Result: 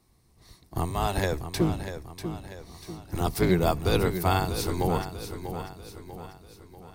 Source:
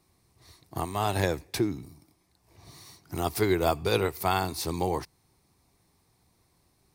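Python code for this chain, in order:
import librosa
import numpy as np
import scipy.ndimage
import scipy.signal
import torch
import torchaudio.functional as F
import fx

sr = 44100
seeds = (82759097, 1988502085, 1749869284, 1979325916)

y = fx.octave_divider(x, sr, octaves=1, level_db=3.0)
y = fx.notch(y, sr, hz=2400.0, q=22.0)
y = fx.echo_feedback(y, sr, ms=642, feedback_pct=47, wet_db=-9.5)
y = fx.doppler_dist(y, sr, depth_ms=0.12, at=(1.41, 3.51))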